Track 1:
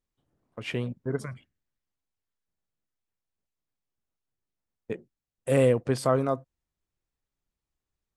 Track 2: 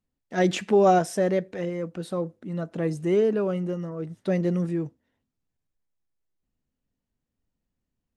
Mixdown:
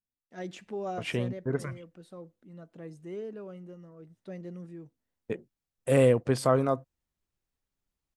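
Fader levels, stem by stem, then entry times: 0.0, -17.0 dB; 0.40, 0.00 s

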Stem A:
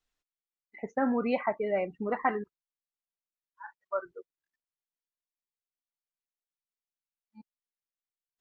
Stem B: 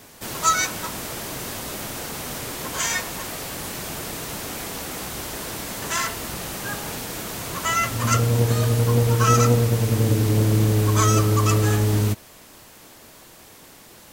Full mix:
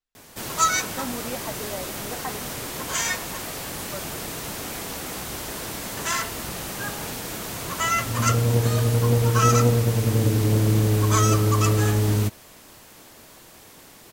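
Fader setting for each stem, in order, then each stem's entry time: -6.0, -1.0 dB; 0.00, 0.15 s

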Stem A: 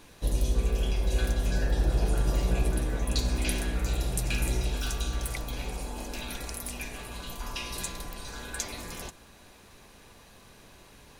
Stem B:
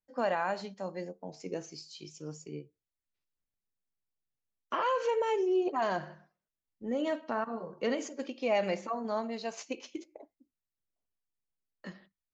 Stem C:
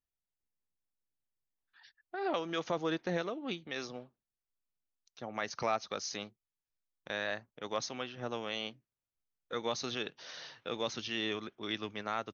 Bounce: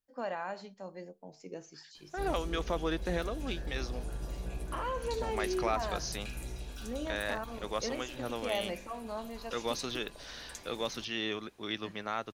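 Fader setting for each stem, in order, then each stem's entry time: -13.0, -6.5, +0.5 dB; 1.95, 0.00, 0.00 s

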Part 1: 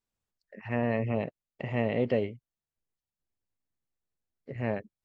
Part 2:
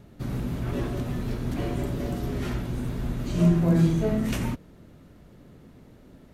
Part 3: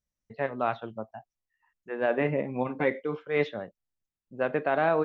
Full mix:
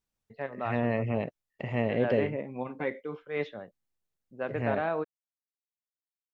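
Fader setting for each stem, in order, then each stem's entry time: 0.0 dB, off, -6.0 dB; 0.00 s, off, 0.00 s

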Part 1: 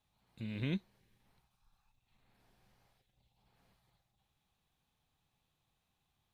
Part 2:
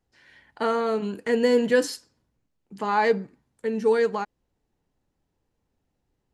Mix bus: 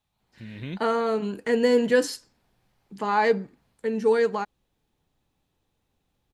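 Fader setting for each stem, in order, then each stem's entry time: +1.0, 0.0 dB; 0.00, 0.20 s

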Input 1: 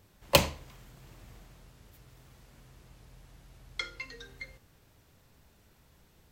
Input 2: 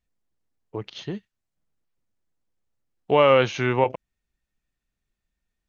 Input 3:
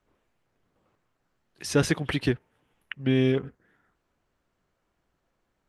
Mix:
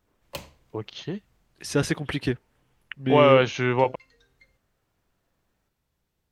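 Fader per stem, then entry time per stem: -15.0, -0.5, -1.0 dB; 0.00, 0.00, 0.00 s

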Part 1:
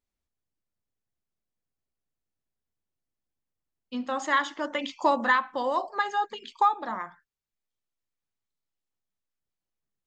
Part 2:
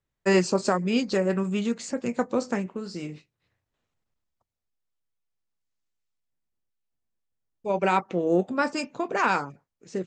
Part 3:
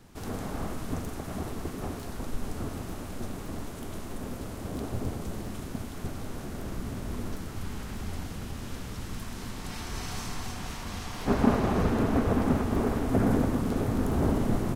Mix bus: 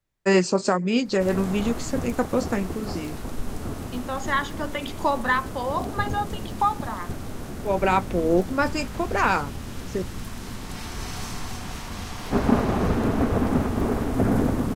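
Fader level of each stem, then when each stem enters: 0.0, +2.0, +3.0 dB; 0.00, 0.00, 1.05 s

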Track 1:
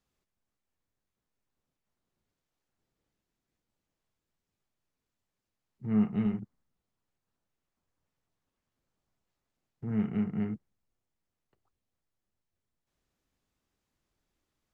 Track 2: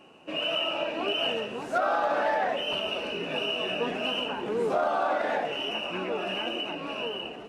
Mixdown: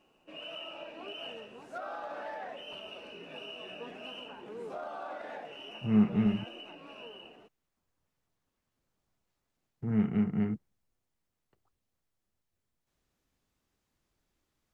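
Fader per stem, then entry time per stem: +2.0, -14.5 dB; 0.00, 0.00 s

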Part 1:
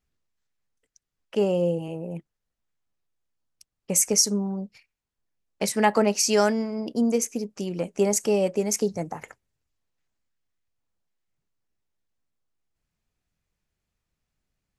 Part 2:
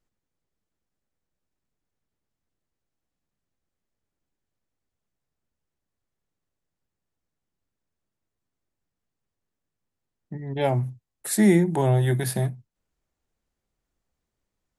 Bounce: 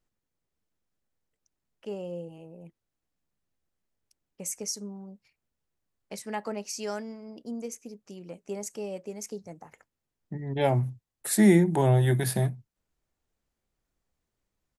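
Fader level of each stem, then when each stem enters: -13.5, -1.0 dB; 0.50, 0.00 s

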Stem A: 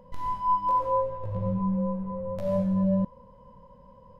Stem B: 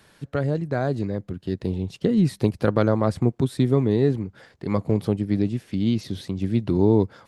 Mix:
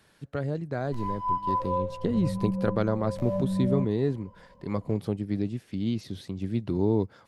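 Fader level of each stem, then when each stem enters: -3.5, -6.5 dB; 0.80, 0.00 s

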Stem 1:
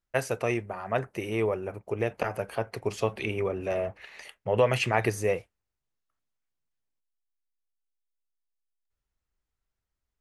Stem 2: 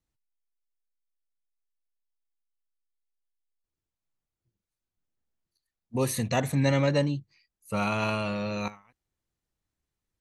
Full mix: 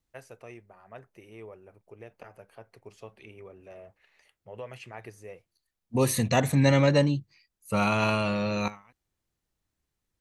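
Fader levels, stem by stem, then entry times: -18.0, +3.0 dB; 0.00, 0.00 s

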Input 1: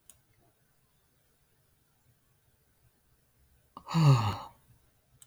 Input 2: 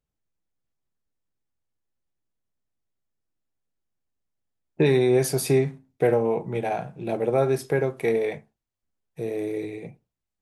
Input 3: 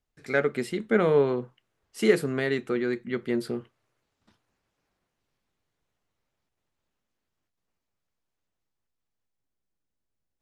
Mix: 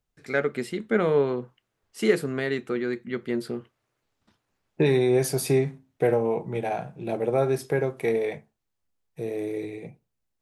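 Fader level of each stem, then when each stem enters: off, -1.5 dB, -0.5 dB; off, 0.00 s, 0.00 s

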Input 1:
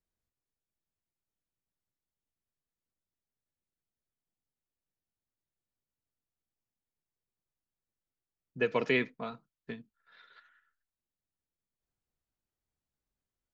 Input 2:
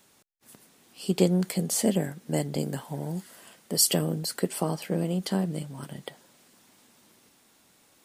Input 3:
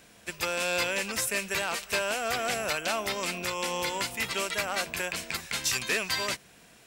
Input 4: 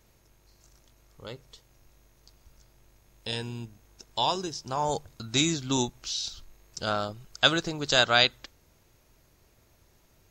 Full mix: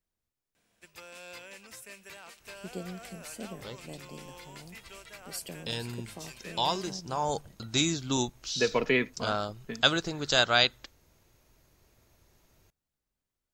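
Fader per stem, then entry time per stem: +2.5, -17.5, -18.0, -2.0 dB; 0.00, 1.55, 0.55, 2.40 s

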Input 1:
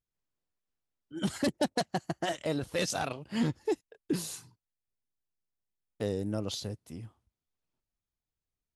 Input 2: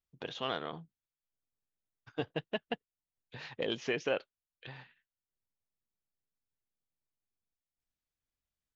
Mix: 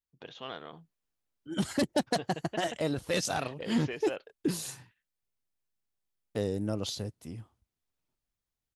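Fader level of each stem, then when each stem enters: +1.0, -5.5 dB; 0.35, 0.00 s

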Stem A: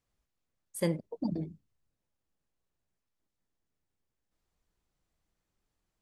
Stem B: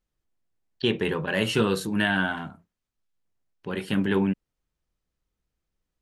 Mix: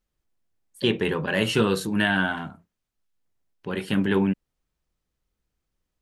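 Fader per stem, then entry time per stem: -9.5, +1.5 dB; 0.00, 0.00 s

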